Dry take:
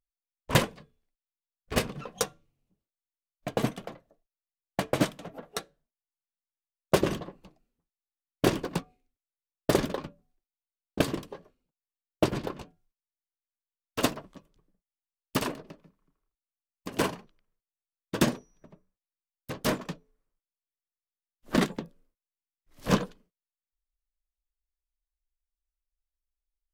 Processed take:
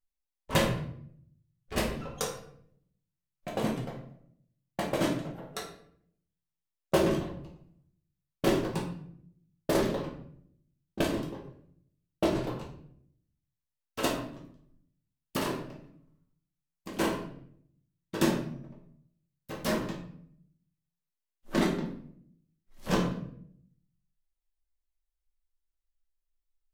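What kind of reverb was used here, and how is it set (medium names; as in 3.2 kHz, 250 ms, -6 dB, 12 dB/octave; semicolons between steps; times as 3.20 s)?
simulated room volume 110 m³, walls mixed, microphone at 1.1 m; trim -6 dB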